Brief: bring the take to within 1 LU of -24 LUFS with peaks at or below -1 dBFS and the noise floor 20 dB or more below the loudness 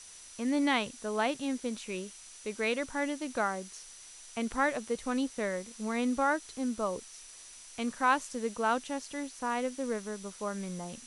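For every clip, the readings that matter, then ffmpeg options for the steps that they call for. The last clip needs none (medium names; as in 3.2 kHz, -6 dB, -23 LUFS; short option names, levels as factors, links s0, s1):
steady tone 5.9 kHz; tone level -54 dBFS; noise floor -51 dBFS; noise floor target -53 dBFS; loudness -33.0 LUFS; peak level -14.0 dBFS; loudness target -24.0 LUFS
-> -af "bandreject=f=5900:w=30"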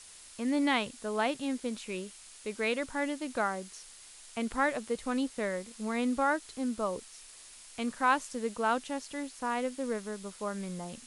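steady tone not found; noise floor -52 dBFS; noise floor target -53 dBFS
-> -af "afftdn=nr=6:nf=-52"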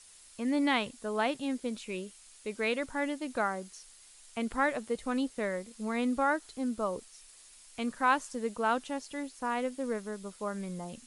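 noise floor -56 dBFS; loudness -33.0 LUFS; peak level -14.0 dBFS; loudness target -24.0 LUFS
-> -af "volume=2.82"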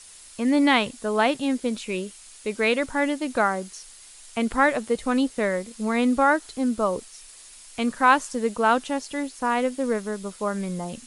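loudness -24.0 LUFS; peak level -5.0 dBFS; noise floor -47 dBFS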